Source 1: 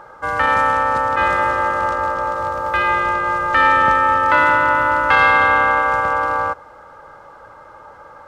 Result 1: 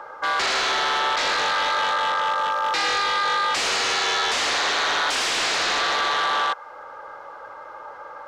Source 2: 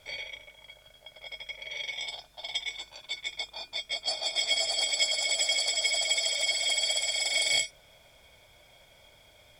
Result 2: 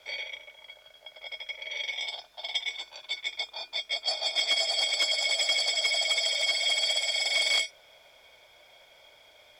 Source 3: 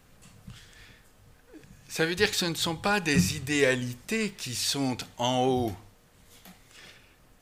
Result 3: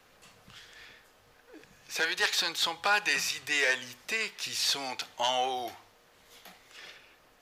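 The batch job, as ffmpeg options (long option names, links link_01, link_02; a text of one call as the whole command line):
ffmpeg -i in.wav -filter_complex "[0:a]acrossover=split=670[link_01][link_02];[link_01]acompressor=threshold=-41dB:ratio=6[link_03];[link_02]aexciter=amount=7.9:drive=1.4:freq=11000[link_04];[link_03][link_04]amix=inputs=2:normalize=0,aeval=exprs='0.106*(abs(mod(val(0)/0.106+3,4)-2)-1)':channel_layout=same,acrossover=split=340 7500:gain=0.178 1 0.0708[link_05][link_06][link_07];[link_05][link_06][link_07]amix=inputs=3:normalize=0,volume=2.5dB" out.wav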